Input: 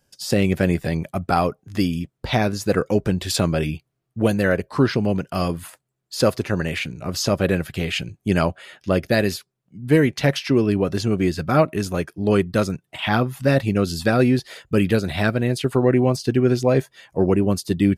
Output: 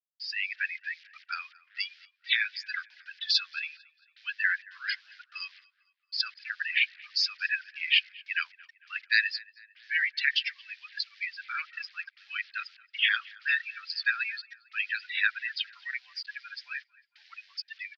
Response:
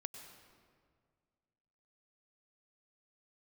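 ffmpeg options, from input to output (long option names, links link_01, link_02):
-filter_complex "[0:a]afftdn=noise_reduction=25:noise_floor=-27,acrusher=bits=7:mix=0:aa=0.5,dynaudnorm=framelen=120:gausssize=9:maxgain=8dB,asuperpass=centerf=2900:order=12:qfactor=0.83,asplit=2[link_01][link_02];[link_02]adelay=225,lowpass=frequency=3900:poles=1,volume=-23dB,asplit=2[link_03][link_04];[link_04]adelay=225,lowpass=frequency=3900:poles=1,volume=0.53,asplit=2[link_05][link_06];[link_06]adelay=225,lowpass=frequency=3900:poles=1,volume=0.53,asplit=2[link_07][link_08];[link_08]adelay=225,lowpass=frequency=3900:poles=1,volume=0.53[link_09];[link_03][link_05][link_07][link_09]amix=inputs=4:normalize=0[link_10];[link_01][link_10]amix=inputs=2:normalize=0"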